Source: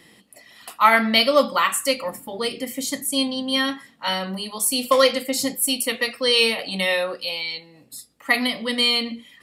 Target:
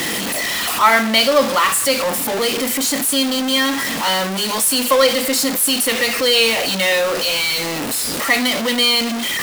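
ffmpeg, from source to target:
-filter_complex "[0:a]aeval=exprs='val(0)+0.5*0.168*sgn(val(0))':c=same,acrossover=split=200[a][b];[a]acompressor=threshold=-40dB:ratio=6[c];[c][b]amix=inputs=2:normalize=0"

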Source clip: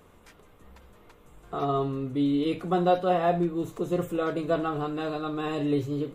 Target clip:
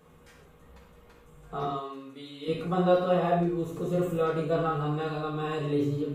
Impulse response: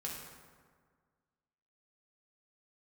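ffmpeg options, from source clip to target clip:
-filter_complex "[0:a]asettb=1/sr,asplit=3[a][b][c];[a]atrim=end=1.654[d];[b]atrim=start=1.65:end=2.48,asetpts=PTS-STARTPTS,afade=t=in:d=0.004:c=qsin,afade=t=out:st=0.826:d=0.004:c=qsin,highpass=f=1.4k:p=1[e];[c]atrim=start=2.476[f];[d][e]acrossfade=d=0.004:c1=hsin:c2=qsin[g];[g][f]acrossfade=d=0.004:c1=qsin:c2=hsin[h];[1:a]atrim=start_sample=2205,atrim=end_sample=6615[i];[h][i]afir=irnorm=-1:irlink=0"

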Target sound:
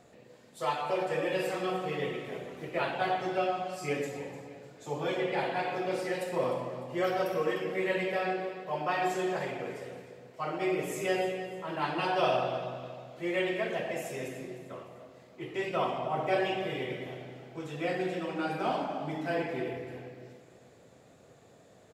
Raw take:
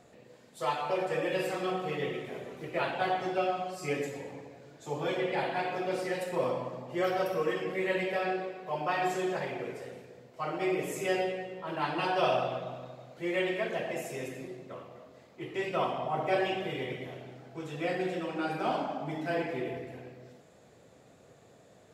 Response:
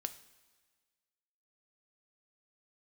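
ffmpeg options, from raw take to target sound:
-af "aecho=1:1:301|602|903|1204:0.188|0.0735|0.0287|0.0112"

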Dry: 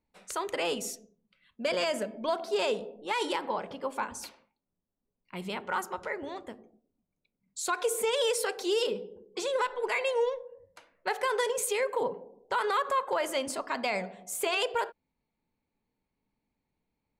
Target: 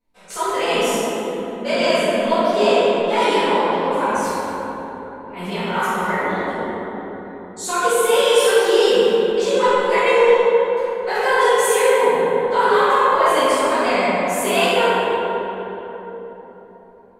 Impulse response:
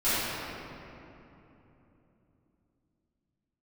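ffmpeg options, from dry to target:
-filter_complex "[0:a]asettb=1/sr,asplit=3[a][b][c];[a]atrim=end=8.664[d];[b]atrim=start=8.66:end=9.13,asetpts=PTS-STARTPTS,afade=t=in:d=0.004:c=qsin,afade=t=out:st=0.466:d=0.004:c=qsin,aeval=exprs='val(0)+0.5*0.00668*sgn(val(0))':c=same[e];[c]atrim=start=9.126[f];[d][e]acrossfade=d=0.004:c1=hsin:c2=qsin[g];[g][f]acrossfade=d=0.004:c1=qsin:c2=hsin[h];[1:a]atrim=start_sample=2205,asetrate=31752,aresample=44100[i];[h][i]afir=irnorm=-1:irlink=0,volume=-3dB"

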